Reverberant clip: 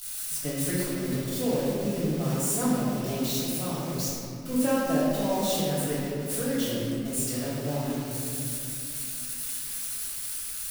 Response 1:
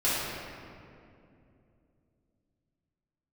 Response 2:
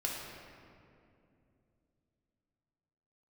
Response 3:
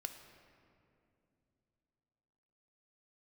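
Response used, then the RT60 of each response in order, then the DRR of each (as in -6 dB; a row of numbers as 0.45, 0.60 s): 1; 2.6, 2.6, 2.8 s; -12.0, -3.0, 6.0 dB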